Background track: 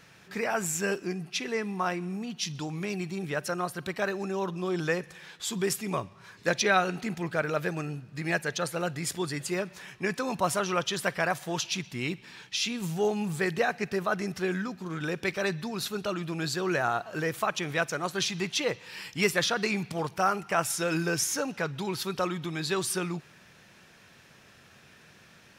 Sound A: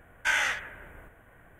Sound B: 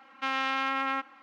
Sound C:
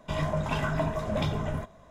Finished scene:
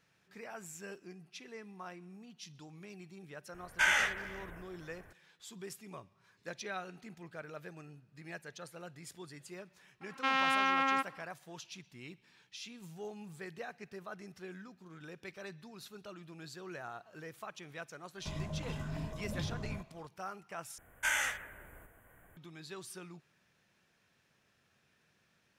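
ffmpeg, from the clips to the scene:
-filter_complex "[1:a]asplit=2[a][b];[0:a]volume=-17.5dB[c];[a]asplit=2[d][e];[e]adelay=370,highpass=300,lowpass=3.4k,asoftclip=type=hard:threshold=-23dB,volume=-19dB[f];[d][f]amix=inputs=2:normalize=0[g];[3:a]acrossover=split=360|3000[h][i][j];[i]acompressor=threshold=-39dB:ratio=6:attack=3.2:release=140:knee=2.83:detection=peak[k];[h][k][j]amix=inputs=3:normalize=0[l];[b]aexciter=amount=2.6:drive=6.9:freq=6.7k[m];[c]asplit=2[n][o];[n]atrim=end=20.784[p];[m]atrim=end=1.59,asetpts=PTS-STARTPTS,volume=-6.5dB[q];[o]atrim=start=22.366[r];[g]atrim=end=1.59,asetpts=PTS-STARTPTS,volume=-2dB,afade=t=in:d=0.004:c=hsin,afade=t=out:st=1.586:d=0.004:c=hsin,adelay=3540[s];[2:a]atrim=end=1.22,asetpts=PTS-STARTPTS,volume=-0.5dB,afade=t=in:d=0.004:c=hsin,afade=t=out:st=1.216:d=0.004:c=hsin,adelay=10010[t];[l]atrim=end=1.9,asetpts=PTS-STARTPTS,volume=-9dB,afade=t=in:d=0.004:c=hsin,afade=t=out:st=1.896:d=0.004:c=hsin,adelay=18170[u];[p][q]acrossfade=d=0.004:c1=hsin:c2=hsin[v];[v][r]acrossfade=d=0.004:c1=hsin:c2=hsin[w];[w][s][t][u]amix=inputs=4:normalize=0"

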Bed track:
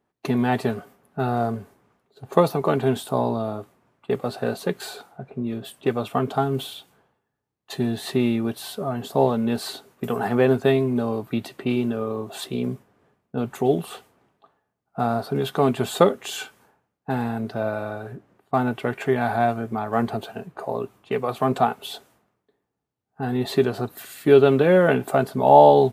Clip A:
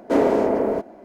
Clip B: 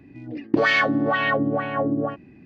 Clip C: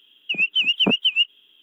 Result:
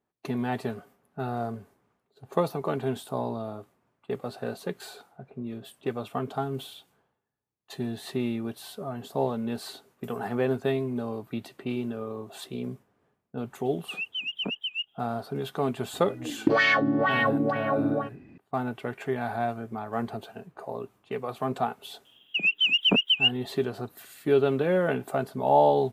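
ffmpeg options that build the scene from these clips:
-filter_complex "[3:a]asplit=2[a][b];[0:a]volume=-8dB[c];[a]atrim=end=1.62,asetpts=PTS-STARTPTS,volume=-13dB,afade=t=in:d=0.004:c=hsin,afade=t=out:st=1.616:d=0.004:c=hsin,adelay=13590[d];[2:a]atrim=end=2.45,asetpts=PTS-STARTPTS,volume=-2.5dB,afade=t=in:d=0.004:c=hsin,afade=t=out:st=2.446:d=0.004:c=hsin,adelay=15930[e];[b]atrim=end=1.62,asetpts=PTS-STARTPTS,volume=-3dB,afade=t=in:d=0.004:c=hsin,afade=t=out:st=1.616:d=0.004:c=hsin,adelay=22050[f];[c][d][e][f]amix=inputs=4:normalize=0"

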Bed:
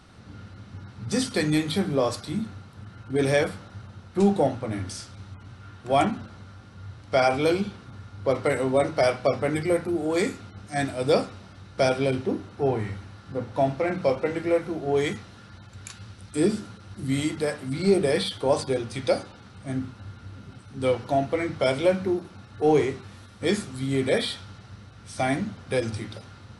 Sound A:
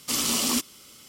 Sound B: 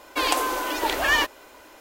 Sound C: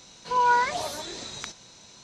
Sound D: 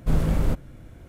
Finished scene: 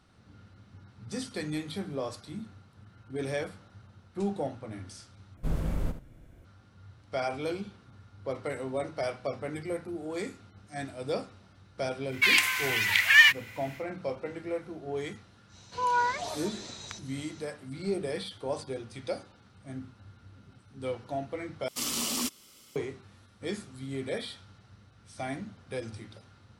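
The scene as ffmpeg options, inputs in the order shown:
-filter_complex "[0:a]volume=-11dB[a];[4:a]aecho=1:1:74:0.282[b];[2:a]highpass=f=2.1k:t=q:w=5.1[c];[a]asplit=3[d][e][f];[d]atrim=end=5.374[g];[b]atrim=end=1.08,asetpts=PTS-STARTPTS,volume=-9dB[h];[e]atrim=start=6.446:end=21.684[i];[1:a]atrim=end=1.08,asetpts=PTS-STARTPTS,volume=-6.5dB[j];[f]atrim=start=22.756[k];[c]atrim=end=1.8,asetpts=PTS-STARTPTS,volume=-2.5dB,afade=t=in:d=0.1,afade=t=out:st=1.7:d=0.1,adelay=12060[l];[3:a]atrim=end=2.03,asetpts=PTS-STARTPTS,volume=-5.5dB,afade=t=in:d=0.1,afade=t=out:st=1.93:d=0.1,adelay=15470[m];[g][h]acrossfade=d=0.004:c1=hsin:c2=hsin[n];[n][i]acrossfade=d=0.004:c1=hsin:c2=hsin[o];[o][j]acrossfade=d=0.004:c1=hsin:c2=hsin[p];[p][k]acrossfade=d=0.004:c1=hsin:c2=hsin[q];[q][l][m]amix=inputs=3:normalize=0"

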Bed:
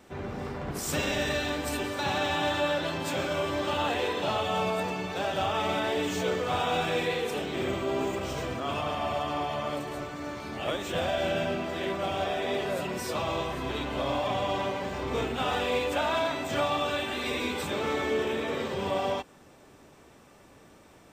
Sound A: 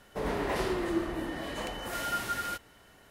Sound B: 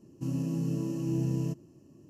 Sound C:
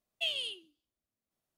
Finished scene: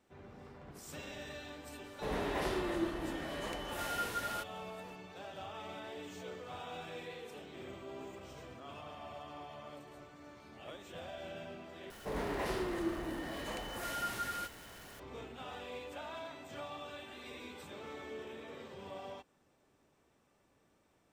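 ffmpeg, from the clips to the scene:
-filter_complex "[1:a]asplit=2[a][b];[0:a]volume=-17.5dB[c];[b]aeval=exprs='val(0)+0.5*0.00794*sgn(val(0))':c=same[d];[c]asplit=2[e][f];[e]atrim=end=11.904[g];[d]atrim=end=3.1,asetpts=PTS-STARTPTS,volume=-6.5dB[h];[f]atrim=start=14.996[i];[a]atrim=end=3.1,asetpts=PTS-STARTPTS,volume=-5dB,afade=t=in:d=0.004:c=hsin,afade=t=out:st=3.096:d=0.004:c=hsin,adelay=1860[j];[g][h]acrossfade=d=0.004:c1=hsin:c2=hsin[k];[k][i]acrossfade=d=0.004:c1=hsin:c2=hsin[l];[l][j]amix=inputs=2:normalize=0"

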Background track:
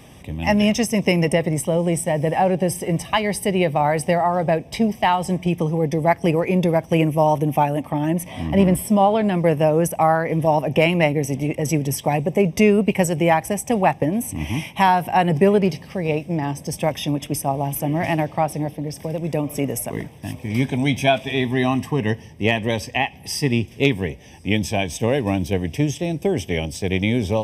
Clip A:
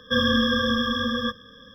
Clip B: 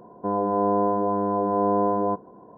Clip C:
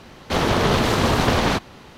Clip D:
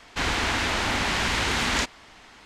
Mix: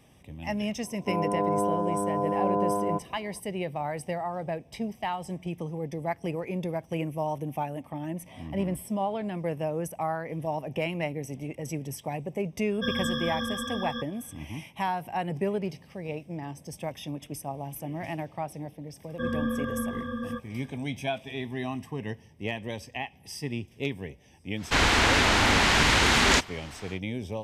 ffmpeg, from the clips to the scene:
-filter_complex "[1:a]asplit=2[a][b];[0:a]volume=-13.5dB[c];[b]lowpass=1.2k[d];[4:a]acontrast=44[e];[2:a]atrim=end=2.57,asetpts=PTS-STARTPTS,volume=-4.5dB,afade=t=in:d=0.004:c=hsin,afade=t=out:st=2.566:d=0.004:c=hsin,adelay=830[f];[a]atrim=end=1.74,asetpts=PTS-STARTPTS,volume=-9dB,afade=t=in:d=0.004:c=hsin,afade=t=out:st=1.736:d=0.004:c=hsin,adelay=12710[g];[d]atrim=end=1.74,asetpts=PTS-STARTPTS,volume=-6.5dB,afade=t=in:d=0.004:c=hsin,afade=t=out:st=1.736:d=0.004:c=hsin,adelay=841428S[h];[e]atrim=end=2.45,asetpts=PTS-STARTPTS,volume=-2dB,afade=t=in:d=0.1,afade=t=out:st=2.35:d=0.1,adelay=24550[i];[c][f][g][h][i]amix=inputs=5:normalize=0"

